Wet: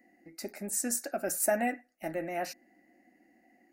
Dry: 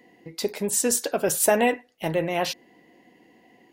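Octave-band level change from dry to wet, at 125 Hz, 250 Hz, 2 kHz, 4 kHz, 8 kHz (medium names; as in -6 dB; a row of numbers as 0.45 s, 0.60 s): -13.5 dB, -8.0 dB, -8.0 dB, -15.0 dB, -8.0 dB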